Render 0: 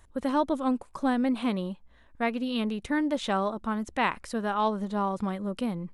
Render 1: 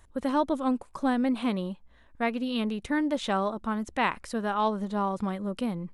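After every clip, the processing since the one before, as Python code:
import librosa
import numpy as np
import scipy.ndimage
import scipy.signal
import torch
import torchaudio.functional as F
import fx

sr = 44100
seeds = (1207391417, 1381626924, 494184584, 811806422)

y = x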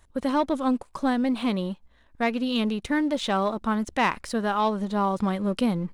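y = fx.peak_eq(x, sr, hz=4300.0, db=3.0, octaves=1.1)
y = fx.leveller(y, sr, passes=1)
y = fx.rider(y, sr, range_db=10, speed_s=0.5)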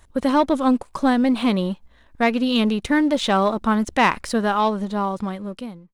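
y = fx.fade_out_tail(x, sr, length_s=1.62)
y = y * librosa.db_to_amplitude(6.0)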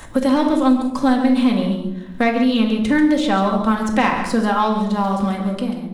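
y = x + 10.0 ** (-10.5 / 20.0) * np.pad(x, (int(137 * sr / 1000.0), 0))[:len(x)]
y = fx.room_shoebox(y, sr, seeds[0], volume_m3=950.0, walls='furnished', distance_m=2.1)
y = fx.band_squash(y, sr, depth_pct=70)
y = y * librosa.db_to_amplitude(-2.5)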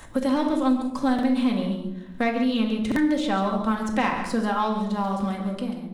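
y = fx.buffer_glitch(x, sr, at_s=(1.14, 2.87), block=2048, repeats=1)
y = y * librosa.db_to_amplitude(-6.5)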